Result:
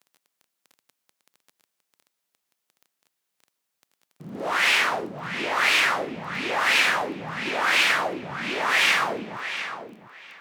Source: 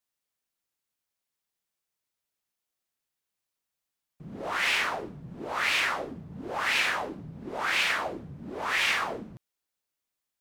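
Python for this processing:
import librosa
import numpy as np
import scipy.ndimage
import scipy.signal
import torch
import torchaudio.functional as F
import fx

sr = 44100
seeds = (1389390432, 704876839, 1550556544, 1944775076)

y = fx.echo_filtered(x, sr, ms=705, feedback_pct=20, hz=4900.0, wet_db=-10)
y = fx.dmg_crackle(y, sr, seeds[0], per_s=12.0, level_db=-44.0)
y = scipy.signal.sosfilt(scipy.signal.butter(2, 160.0, 'highpass', fs=sr, output='sos'), y)
y = F.gain(torch.from_numpy(y), 6.0).numpy()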